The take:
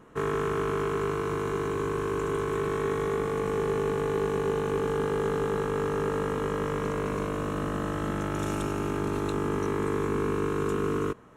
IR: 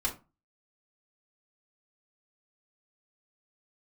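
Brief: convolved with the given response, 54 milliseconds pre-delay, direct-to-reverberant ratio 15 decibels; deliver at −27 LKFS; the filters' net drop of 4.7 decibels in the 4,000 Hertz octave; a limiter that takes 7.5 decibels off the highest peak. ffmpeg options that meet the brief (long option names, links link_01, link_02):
-filter_complex "[0:a]equalizer=frequency=4000:width_type=o:gain=-7,alimiter=limit=-23.5dB:level=0:latency=1,asplit=2[link_01][link_02];[1:a]atrim=start_sample=2205,adelay=54[link_03];[link_02][link_03]afir=irnorm=-1:irlink=0,volume=-20.5dB[link_04];[link_01][link_04]amix=inputs=2:normalize=0,volume=6dB"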